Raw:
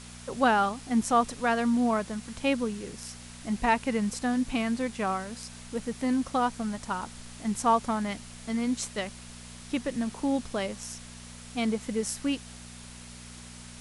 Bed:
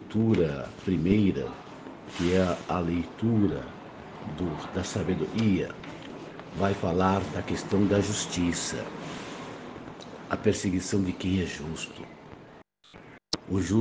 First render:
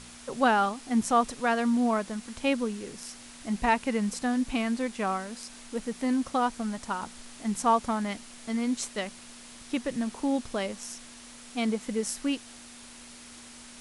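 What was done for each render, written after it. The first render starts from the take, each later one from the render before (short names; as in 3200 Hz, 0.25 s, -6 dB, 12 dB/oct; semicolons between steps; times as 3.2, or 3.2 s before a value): de-hum 60 Hz, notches 3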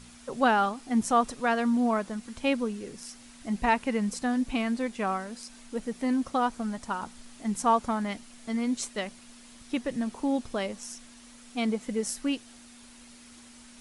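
denoiser 6 dB, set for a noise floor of -48 dBFS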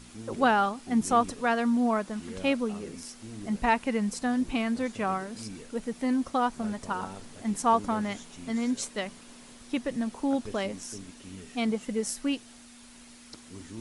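add bed -18 dB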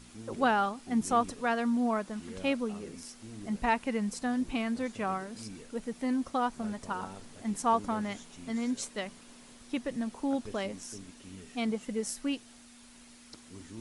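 gain -3.5 dB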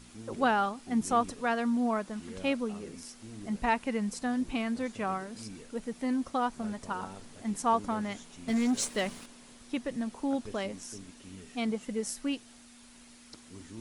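8.48–9.26 sample leveller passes 2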